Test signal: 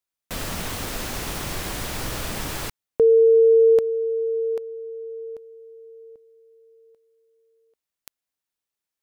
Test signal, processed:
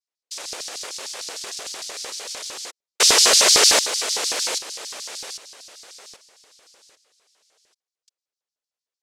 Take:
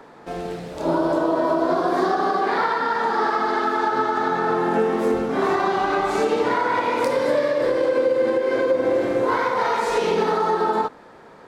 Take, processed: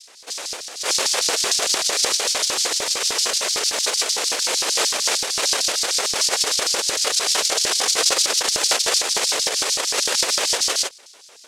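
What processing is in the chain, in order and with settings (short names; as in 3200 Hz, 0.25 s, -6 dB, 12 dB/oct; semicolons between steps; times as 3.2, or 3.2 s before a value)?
noise vocoder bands 1; LFO high-pass square 6.6 Hz 470–4800 Hz; gain -2.5 dB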